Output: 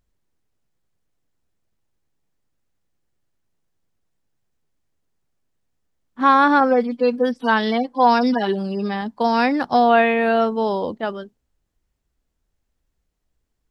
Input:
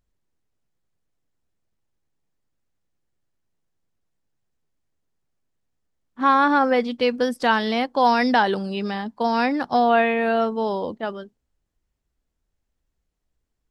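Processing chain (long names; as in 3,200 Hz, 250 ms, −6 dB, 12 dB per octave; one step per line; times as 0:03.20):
0:06.60–0:09.02: harmonic-percussive split with one part muted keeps harmonic
level +3 dB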